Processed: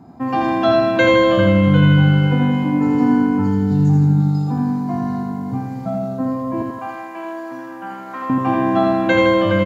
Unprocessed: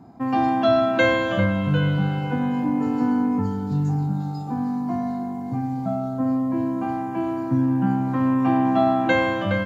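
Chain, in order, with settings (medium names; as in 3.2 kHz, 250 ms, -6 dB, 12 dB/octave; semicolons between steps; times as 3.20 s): 6.62–8.30 s: high-pass 760 Hz 12 dB/octave; feedback delay 82 ms, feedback 55%, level -3.5 dB; trim +3 dB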